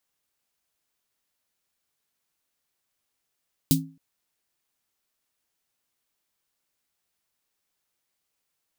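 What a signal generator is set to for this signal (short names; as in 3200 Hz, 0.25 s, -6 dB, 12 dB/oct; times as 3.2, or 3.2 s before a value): snare drum length 0.27 s, tones 160 Hz, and 270 Hz, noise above 3500 Hz, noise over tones -2 dB, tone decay 0.36 s, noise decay 0.14 s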